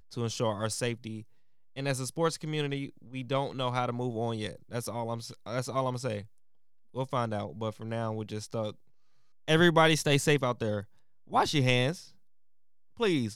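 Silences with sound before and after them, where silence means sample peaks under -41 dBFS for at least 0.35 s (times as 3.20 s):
1.22–1.76 s
6.24–6.96 s
8.72–9.48 s
10.84–11.31 s
12.05–13.00 s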